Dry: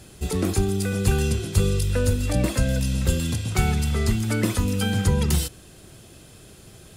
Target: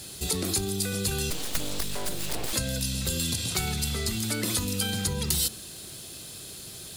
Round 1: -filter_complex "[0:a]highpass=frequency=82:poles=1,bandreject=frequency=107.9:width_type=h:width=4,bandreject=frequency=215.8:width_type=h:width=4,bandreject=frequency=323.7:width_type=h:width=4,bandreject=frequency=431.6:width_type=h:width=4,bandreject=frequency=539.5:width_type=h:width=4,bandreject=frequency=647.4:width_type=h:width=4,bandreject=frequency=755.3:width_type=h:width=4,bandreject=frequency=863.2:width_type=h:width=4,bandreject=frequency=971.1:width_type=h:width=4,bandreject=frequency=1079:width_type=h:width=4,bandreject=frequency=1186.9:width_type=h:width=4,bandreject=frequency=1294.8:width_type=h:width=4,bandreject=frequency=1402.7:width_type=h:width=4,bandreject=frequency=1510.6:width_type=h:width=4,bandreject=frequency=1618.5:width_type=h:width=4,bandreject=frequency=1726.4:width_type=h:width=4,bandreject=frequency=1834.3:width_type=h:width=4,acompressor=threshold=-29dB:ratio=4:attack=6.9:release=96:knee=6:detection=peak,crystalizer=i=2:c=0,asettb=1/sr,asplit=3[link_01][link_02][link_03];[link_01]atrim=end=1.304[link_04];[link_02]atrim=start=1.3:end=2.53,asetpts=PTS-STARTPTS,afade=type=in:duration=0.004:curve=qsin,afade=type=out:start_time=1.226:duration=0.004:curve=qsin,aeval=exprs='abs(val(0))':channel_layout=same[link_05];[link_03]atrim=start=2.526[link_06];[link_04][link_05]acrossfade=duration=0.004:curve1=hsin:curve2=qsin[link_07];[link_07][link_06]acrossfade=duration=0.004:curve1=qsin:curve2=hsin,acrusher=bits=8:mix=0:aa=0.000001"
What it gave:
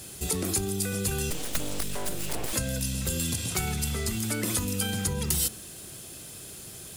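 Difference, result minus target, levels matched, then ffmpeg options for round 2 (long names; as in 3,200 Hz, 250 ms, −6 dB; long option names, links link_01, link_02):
4,000 Hz band −4.0 dB
-filter_complex "[0:a]highpass=frequency=82:poles=1,equalizer=frequency=4100:width=2.3:gain=8.5,bandreject=frequency=107.9:width_type=h:width=4,bandreject=frequency=215.8:width_type=h:width=4,bandreject=frequency=323.7:width_type=h:width=4,bandreject=frequency=431.6:width_type=h:width=4,bandreject=frequency=539.5:width_type=h:width=4,bandreject=frequency=647.4:width_type=h:width=4,bandreject=frequency=755.3:width_type=h:width=4,bandreject=frequency=863.2:width_type=h:width=4,bandreject=frequency=971.1:width_type=h:width=4,bandreject=frequency=1079:width_type=h:width=4,bandreject=frequency=1186.9:width_type=h:width=4,bandreject=frequency=1294.8:width_type=h:width=4,bandreject=frequency=1402.7:width_type=h:width=4,bandreject=frequency=1510.6:width_type=h:width=4,bandreject=frequency=1618.5:width_type=h:width=4,bandreject=frequency=1726.4:width_type=h:width=4,bandreject=frequency=1834.3:width_type=h:width=4,acompressor=threshold=-29dB:ratio=4:attack=6.9:release=96:knee=6:detection=peak,crystalizer=i=2:c=0,asettb=1/sr,asplit=3[link_01][link_02][link_03];[link_01]atrim=end=1.304[link_04];[link_02]atrim=start=1.3:end=2.53,asetpts=PTS-STARTPTS,afade=type=in:duration=0.004:curve=qsin,afade=type=out:start_time=1.226:duration=0.004:curve=qsin,aeval=exprs='abs(val(0))':channel_layout=same[link_05];[link_03]atrim=start=2.526[link_06];[link_04][link_05]acrossfade=duration=0.004:curve1=hsin:curve2=qsin[link_07];[link_07][link_06]acrossfade=duration=0.004:curve1=qsin:curve2=hsin,acrusher=bits=8:mix=0:aa=0.000001"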